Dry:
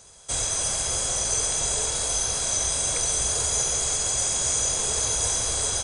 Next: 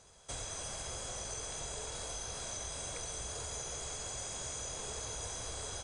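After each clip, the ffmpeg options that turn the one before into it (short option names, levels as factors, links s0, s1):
-af "lowpass=f=3400:p=1,acompressor=threshold=0.02:ratio=3,volume=0.501"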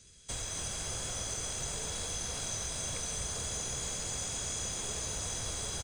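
-filter_complex "[0:a]acrossover=split=390|1700[s0][s1][s2];[s1]acrusher=bits=6:dc=4:mix=0:aa=0.000001[s3];[s0][s3][s2]amix=inputs=3:normalize=0,asplit=8[s4][s5][s6][s7][s8][s9][s10][s11];[s5]adelay=254,afreqshift=44,volume=0.447[s12];[s6]adelay=508,afreqshift=88,volume=0.24[s13];[s7]adelay=762,afreqshift=132,volume=0.13[s14];[s8]adelay=1016,afreqshift=176,volume=0.07[s15];[s9]adelay=1270,afreqshift=220,volume=0.038[s16];[s10]adelay=1524,afreqshift=264,volume=0.0204[s17];[s11]adelay=1778,afreqshift=308,volume=0.0111[s18];[s4][s12][s13][s14][s15][s16][s17][s18]amix=inputs=8:normalize=0,volume=1.58"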